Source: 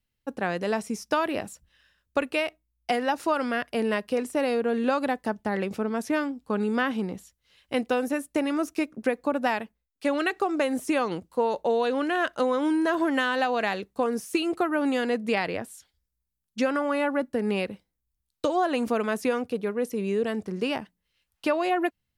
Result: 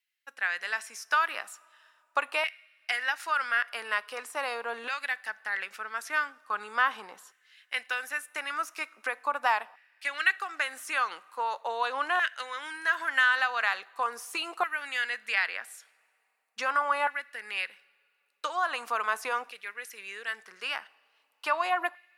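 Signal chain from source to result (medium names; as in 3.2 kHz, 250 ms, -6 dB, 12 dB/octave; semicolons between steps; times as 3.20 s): two-slope reverb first 0.6 s, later 2.5 s, from -13 dB, DRR 19.5 dB; LFO high-pass saw down 0.41 Hz 960–2000 Hz; trim -1.5 dB; Opus 128 kbps 48 kHz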